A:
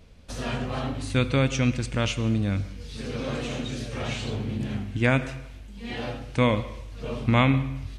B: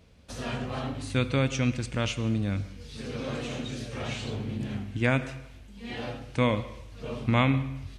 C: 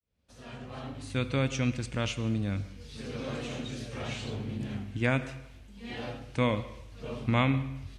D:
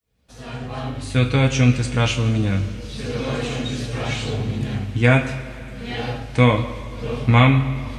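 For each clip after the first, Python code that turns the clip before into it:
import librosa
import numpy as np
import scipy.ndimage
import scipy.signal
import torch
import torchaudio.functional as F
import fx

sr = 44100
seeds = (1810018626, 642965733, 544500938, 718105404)

y1 = scipy.signal.sosfilt(scipy.signal.butter(2, 57.0, 'highpass', fs=sr, output='sos'), x)
y1 = F.gain(torch.from_numpy(y1), -3.0).numpy()
y2 = fx.fade_in_head(y1, sr, length_s=1.45)
y2 = F.gain(torch.from_numpy(y2), -2.5).numpy()
y3 = fx.rev_double_slope(y2, sr, seeds[0], early_s=0.22, late_s=3.9, knee_db=-22, drr_db=1.5)
y3 = F.gain(torch.from_numpy(y3), 9.0).numpy()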